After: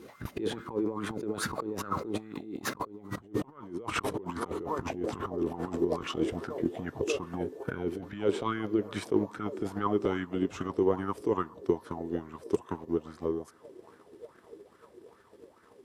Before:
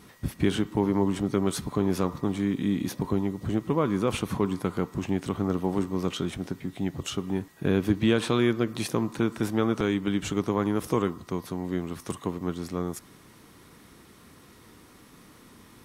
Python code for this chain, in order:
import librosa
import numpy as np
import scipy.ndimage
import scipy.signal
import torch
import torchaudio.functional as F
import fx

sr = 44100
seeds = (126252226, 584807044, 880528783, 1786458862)

y = fx.doppler_pass(x, sr, speed_mps=29, closest_m=8.5, pass_at_s=3.17)
y = scipy.signal.sosfilt(scipy.signal.butter(2, 58.0, 'highpass', fs=sr, output='sos'), y)
y = fx.high_shelf(y, sr, hz=8000.0, db=-4.5)
y = fx.echo_banded(y, sr, ms=594, feedback_pct=83, hz=510.0, wet_db=-20.5)
y = fx.transient(y, sr, attack_db=9, sustain_db=-3)
y = fx.peak_eq(y, sr, hz=160.0, db=-4.0, octaves=0.31)
y = fx.over_compress(y, sr, threshold_db=-49.0, ratio=-1.0)
y = fx.bell_lfo(y, sr, hz=2.4, low_hz=350.0, high_hz=1500.0, db=16)
y = F.gain(torch.from_numpy(y), 7.5).numpy()